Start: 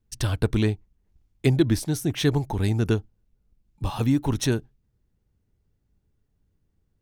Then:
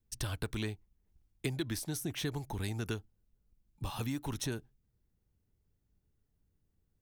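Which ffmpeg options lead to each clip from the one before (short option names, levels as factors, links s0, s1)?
-filter_complex "[0:a]highshelf=f=9600:g=8,acrossover=split=550|1100[s0][s1][s2];[s0]acompressor=threshold=0.0355:ratio=4[s3];[s1]acompressor=threshold=0.00708:ratio=4[s4];[s2]acompressor=threshold=0.0282:ratio=4[s5];[s3][s4][s5]amix=inputs=3:normalize=0,volume=0.473"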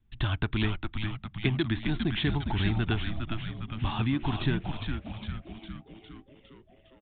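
-filter_complex "[0:a]asplit=9[s0][s1][s2][s3][s4][s5][s6][s7][s8];[s1]adelay=407,afreqshift=-110,volume=0.562[s9];[s2]adelay=814,afreqshift=-220,volume=0.327[s10];[s3]adelay=1221,afreqshift=-330,volume=0.188[s11];[s4]adelay=1628,afreqshift=-440,volume=0.11[s12];[s5]adelay=2035,afreqshift=-550,volume=0.0638[s13];[s6]adelay=2442,afreqshift=-660,volume=0.0367[s14];[s7]adelay=2849,afreqshift=-770,volume=0.0214[s15];[s8]adelay=3256,afreqshift=-880,volume=0.0124[s16];[s0][s9][s10][s11][s12][s13][s14][s15][s16]amix=inputs=9:normalize=0,aresample=8000,aresample=44100,equalizer=f=490:w=4:g=-14,volume=2.82"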